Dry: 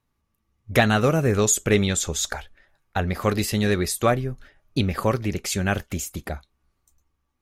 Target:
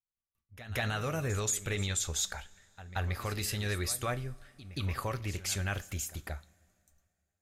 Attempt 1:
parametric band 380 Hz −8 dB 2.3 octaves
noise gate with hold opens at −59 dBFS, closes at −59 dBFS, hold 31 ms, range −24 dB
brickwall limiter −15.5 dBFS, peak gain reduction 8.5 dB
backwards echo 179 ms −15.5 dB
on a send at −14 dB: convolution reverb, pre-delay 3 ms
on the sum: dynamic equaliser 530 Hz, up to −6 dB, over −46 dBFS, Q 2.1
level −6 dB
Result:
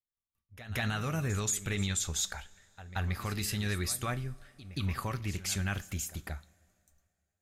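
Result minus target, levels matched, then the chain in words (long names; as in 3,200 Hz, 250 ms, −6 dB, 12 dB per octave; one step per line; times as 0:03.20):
500 Hz band −3.5 dB
parametric band 380 Hz −8 dB 2.3 octaves
noise gate with hold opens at −59 dBFS, closes at −59 dBFS, hold 31 ms, range −24 dB
brickwall limiter −15.5 dBFS, peak gain reduction 8.5 dB
backwards echo 179 ms −15.5 dB
on a send at −14 dB: convolution reverb, pre-delay 3 ms
on the sum: dynamic equaliser 190 Hz, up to −6 dB, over −46 dBFS, Q 2.1
level −6 dB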